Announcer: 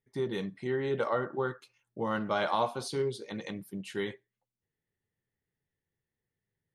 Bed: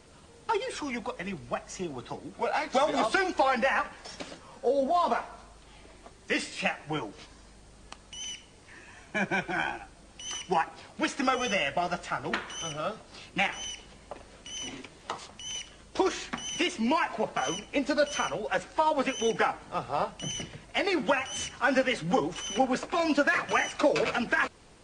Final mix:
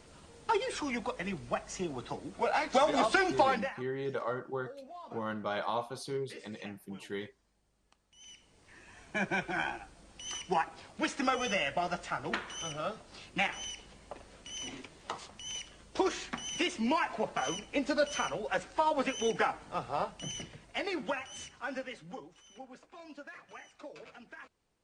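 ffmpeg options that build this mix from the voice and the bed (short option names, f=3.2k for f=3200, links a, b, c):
-filter_complex "[0:a]adelay=3150,volume=-5dB[a];[1:a]volume=17.5dB,afade=t=out:st=3.42:d=0.33:silence=0.0891251,afade=t=in:st=8.11:d=0.97:silence=0.11885,afade=t=out:st=19.78:d=2.56:silence=0.1[b];[a][b]amix=inputs=2:normalize=0"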